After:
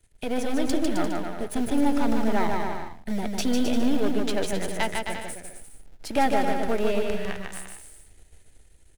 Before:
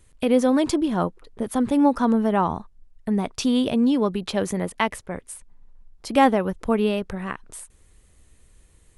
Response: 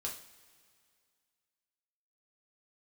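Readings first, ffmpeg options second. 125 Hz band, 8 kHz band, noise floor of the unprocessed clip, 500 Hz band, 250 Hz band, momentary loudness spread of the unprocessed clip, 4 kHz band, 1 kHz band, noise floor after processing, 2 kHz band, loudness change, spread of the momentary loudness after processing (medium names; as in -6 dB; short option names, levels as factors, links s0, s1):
-5.0 dB, 0.0 dB, -57 dBFS, -3.5 dB, -5.0 dB, 16 LU, -1.5 dB, -4.0 dB, -55 dBFS, -0.5 dB, -4.5 dB, 14 LU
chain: -filter_complex "[0:a]aeval=exprs='if(lt(val(0),0),0.251*val(0),val(0))':c=same,bandreject=f=520:w=12,acrossover=split=170|1900[s0][s1][s2];[s0]acrusher=bits=3:mode=log:mix=0:aa=0.000001[s3];[s3][s1][s2]amix=inputs=3:normalize=0,dynaudnorm=f=140:g=11:m=1.5,equalizer=f=1100:t=o:w=0.23:g=-14.5,aecho=1:1:150|262.5|346.9|410.2|457.6:0.631|0.398|0.251|0.158|0.1,asplit=2[s4][s5];[s5]asoftclip=type=hard:threshold=0.158,volume=0.473[s6];[s4][s6]amix=inputs=2:normalize=0,equalizer=f=190:t=o:w=0.98:g=-4.5,volume=0.562"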